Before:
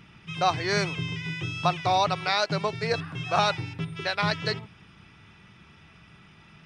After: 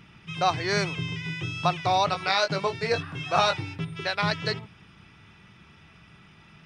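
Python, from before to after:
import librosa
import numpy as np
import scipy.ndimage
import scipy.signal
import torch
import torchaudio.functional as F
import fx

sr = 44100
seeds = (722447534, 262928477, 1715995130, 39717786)

y = fx.doubler(x, sr, ms=21.0, db=-6.0, at=(2.07, 3.76), fade=0.02)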